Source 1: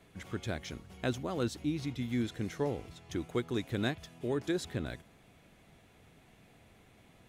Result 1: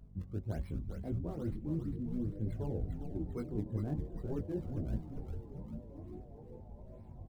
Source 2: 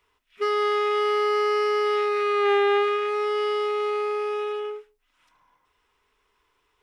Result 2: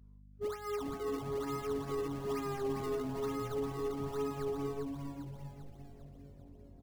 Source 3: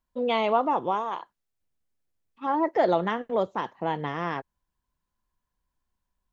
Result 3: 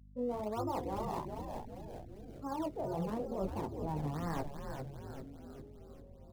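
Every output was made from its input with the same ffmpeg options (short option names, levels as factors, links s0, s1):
-filter_complex "[0:a]aemphasis=mode=reproduction:type=bsi,afftdn=nr=13:nf=-39,equalizer=f=3300:t=o:w=0.41:g=-12,areverse,acompressor=threshold=0.0141:ratio=10,areverse,flanger=delay=18:depth=2.7:speed=1.6,acrossover=split=260|1100[s0][s1][s2];[s2]acrusher=samples=32:mix=1:aa=0.000001:lfo=1:lforange=51.2:lforate=1.1[s3];[s0][s1][s3]amix=inputs=3:normalize=0,aeval=exprs='val(0)+0.000891*(sin(2*PI*50*n/s)+sin(2*PI*2*50*n/s)/2+sin(2*PI*3*50*n/s)/3+sin(2*PI*4*50*n/s)/4+sin(2*PI*5*50*n/s)/5)':c=same,asplit=9[s4][s5][s6][s7][s8][s9][s10][s11][s12];[s5]adelay=399,afreqshift=-140,volume=0.562[s13];[s6]adelay=798,afreqshift=-280,volume=0.327[s14];[s7]adelay=1197,afreqshift=-420,volume=0.188[s15];[s8]adelay=1596,afreqshift=-560,volume=0.11[s16];[s9]adelay=1995,afreqshift=-700,volume=0.0638[s17];[s10]adelay=2394,afreqshift=-840,volume=0.0367[s18];[s11]adelay=2793,afreqshift=-980,volume=0.0214[s19];[s12]adelay=3192,afreqshift=-1120,volume=0.0124[s20];[s4][s13][s14][s15][s16][s17][s18][s19][s20]amix=inputs=9:normalize=0,volume=1.88"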